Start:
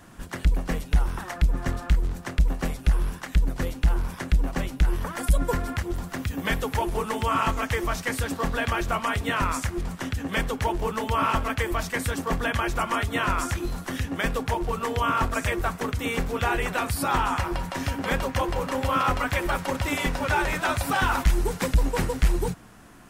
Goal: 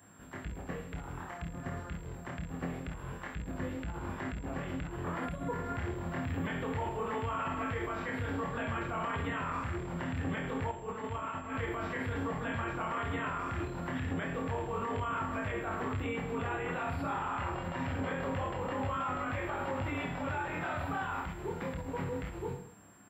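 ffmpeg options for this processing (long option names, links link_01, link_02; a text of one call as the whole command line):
ffmpeg -i in.wav -filter_complex "[0:a]flanger=delay=19.5:depth=5.5:speed=0.26,aecho=1:1:30|66|109.2|161|223.2:0.631|0.398|0.251|0.158|0.1,acrossover=split=5300[link_01][link_02];[link_01]dynaudnorm=framelen=340:gausssize=21:maxgain=11.5dB[link_03];[link_03][link_02]amix=inputs=2:normalize=0,alimiter=limit=-19dB:level=0:latency=1:release=49,highpass=frequency=70:width=0.5412,highpass=frequency=70:width=1.3066,highshelf=frequency=11000:gain=7,acrossover=split=3600[link_04][link_05];[link_05]acompressor=threshold=-54dB:ratio=4:attack=1:release=60[link_06];[link_04][link_06]amix=inputs=2:normalize=0,asettb=1/sr,asplit=3[link_07][link_08][link_09];[link_07]atrim=end=10.714[link_10];[link_08]atrim=start=10.71:end=11.54,asetpts=PTS-STARTPTS,afade=type=in:duration=0.004:curve=qsin,afade=type=out:start_time=0.826:duration=0.004:curve=qsin,agate=range=-7dB:threshold=-26dB:ratio=16:detection=peak[link_11];[link_09]atrim=start=11.536[link_12];[link_10][link_11]acrossfade=duration=0.004:curve1=hsin:curve2=qsin[link_13];[link_13][link_12]acrossfade=duration=0.004:curve1=qsin:curve2=hsin,aeval=exprs='val(0)+0.00794*sin(2*PI*7500*n/s)':channel_layout=same,equalizer=frequency=7500:width_type=o:width=1.6:gain=-13,volume=-7dB" out.wav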